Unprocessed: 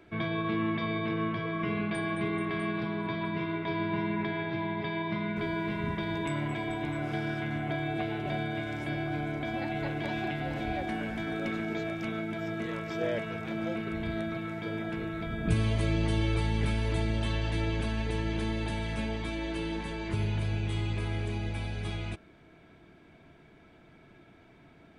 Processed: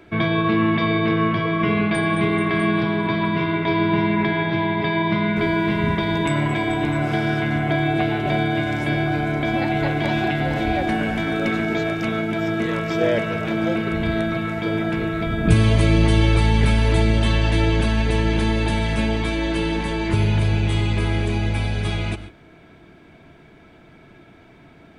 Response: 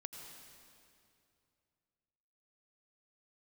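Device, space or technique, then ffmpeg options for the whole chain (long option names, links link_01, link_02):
keyed gated reverb: -filter_complex "[0:a]asplit=3[link_01][link_02][link_03];[1:a]atrim=start_sample=2205[link_04];[link_02][link_04]afir=irnorm=-1:irlink=0[link_05];[link_03]apad=whole_len=1101916[link_06];[link_05][link_06]sidechaingate=range=-33dB:threshold=-50dB:ratio=16:detection=peak,volume=-2dB[link_07];[link_01][link_07]amix=inputs=2:normalize=0,volume=8.5dB"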